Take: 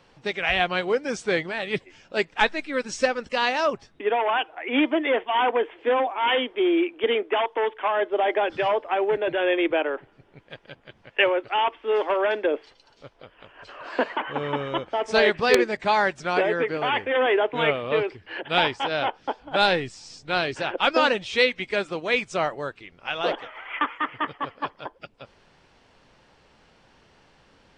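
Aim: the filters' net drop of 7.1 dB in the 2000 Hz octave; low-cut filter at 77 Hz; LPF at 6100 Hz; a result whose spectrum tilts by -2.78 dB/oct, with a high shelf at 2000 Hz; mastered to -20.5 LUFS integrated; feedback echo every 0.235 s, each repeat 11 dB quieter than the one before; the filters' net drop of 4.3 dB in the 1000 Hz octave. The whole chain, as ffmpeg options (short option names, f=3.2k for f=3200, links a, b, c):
-af "highpass=77,lowpass=6.1k,equalizer=f=1k:t=o:g=-3.5,highshelf=f=2k:g=-5,equalizer=f=2k:t=o:g=-5,aecho=1:1:235|470|705:0.282|0.0789|0.0221,volume=6.5dB"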